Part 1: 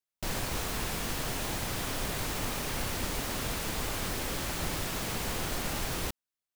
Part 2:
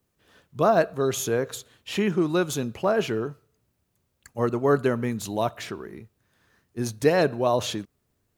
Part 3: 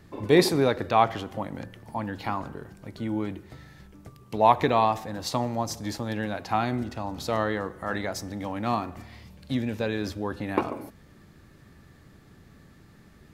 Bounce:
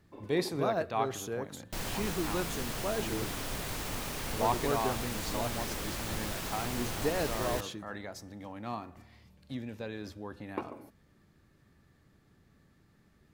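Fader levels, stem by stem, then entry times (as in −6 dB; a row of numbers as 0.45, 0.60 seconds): −3.5, −12.0, −11.5 decibels; 1.50, 0.00, 0.00 seconds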